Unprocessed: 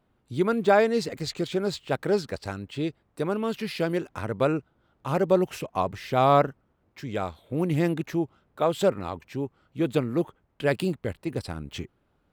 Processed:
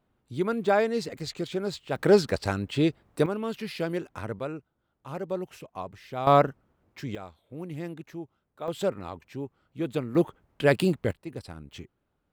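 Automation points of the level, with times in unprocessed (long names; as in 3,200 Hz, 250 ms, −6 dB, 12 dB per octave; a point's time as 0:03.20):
−3.5 dB
from 0:01.96 +5.5 dB
from 0:03.26 −3.5 dB
from 0:04.39 −10.5 dB
from 0:06.27 +0.5 dB
from 0:07.15 −12 dB
from 0:08.68 −5 dB
from 0:10.15 +3 dB
from 0:11.11 −7.5 dB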